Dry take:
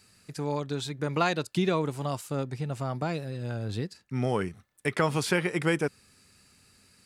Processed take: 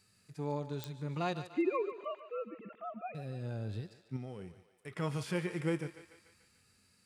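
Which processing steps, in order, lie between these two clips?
1.52–3.15 s: formants replaced by sine waves; harmonic-percussive split percussive -14 dB; 4.16–4.95 s: compression 6:1, threshold -35 dBFS, peak gain reduction 10.5 dB; thinning echo 146 ms, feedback 61%, high-pass 470 Hz, level -12 dB; clicks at 0.84 s, -17 dBFS; trim -5.5 dB

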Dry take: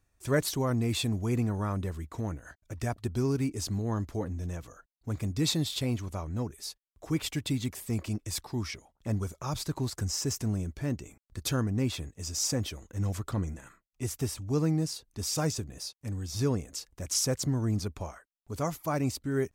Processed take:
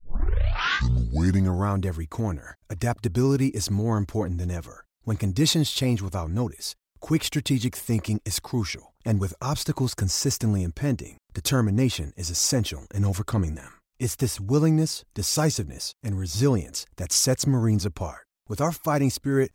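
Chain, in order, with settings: tape start-up on the opening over 1.69 s; trim +7 dB

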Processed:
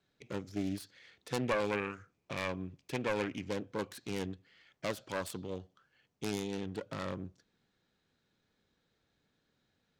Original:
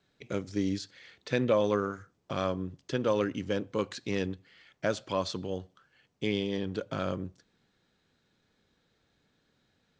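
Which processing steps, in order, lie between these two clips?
self-modulated delay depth 0.5 ms; 1.44–3.49 s: peaking EQ 2.4 kHz +11.5 dB 0.3 oct; trim -5.5 dB

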